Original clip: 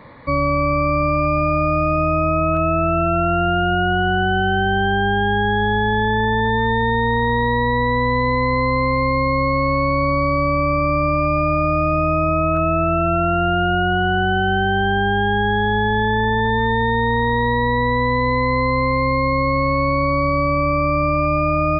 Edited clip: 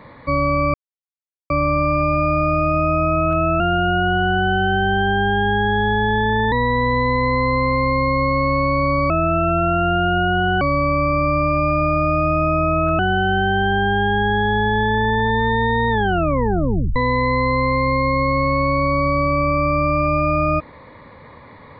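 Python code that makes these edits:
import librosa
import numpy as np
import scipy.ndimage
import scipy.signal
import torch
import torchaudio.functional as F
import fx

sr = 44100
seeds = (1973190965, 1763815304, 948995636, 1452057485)

y = fx.edit(x, sr, fx.insert_silence(at_s=0.74, length_s=0.76),
    fx.cut(start_s=2.84, length_s=0.6),
    fx.cut(start_s=6.36, length_s=1.35),
    fx.move(start_s=12.67, length_s=1.51, to_s=10.29),
    fx.tape_stop(start_s=17.08, length_s=1.07), tone=tone)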